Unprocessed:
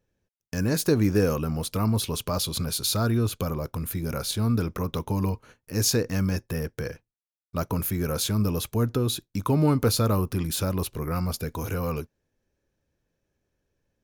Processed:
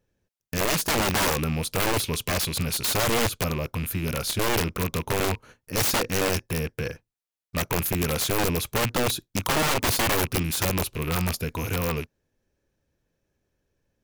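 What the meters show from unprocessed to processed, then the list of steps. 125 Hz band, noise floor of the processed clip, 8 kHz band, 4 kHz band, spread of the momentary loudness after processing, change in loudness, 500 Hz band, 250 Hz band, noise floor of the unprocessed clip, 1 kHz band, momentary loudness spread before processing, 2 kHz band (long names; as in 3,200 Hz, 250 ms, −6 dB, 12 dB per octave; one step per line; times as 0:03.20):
−3.5 dB, below −85 dBFS, +3.5 dB, +4.0 dB, 8 LU, +1.0 dB, +1.0 dB, −3.5 dB, below −85 dBFS, +5.5 dB, 9 LU, +10.5 dB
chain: loose part that buzzes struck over −35 dBFS, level −26 dBFS
wrap-around overflow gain 19.5 dB
level +1.5 dB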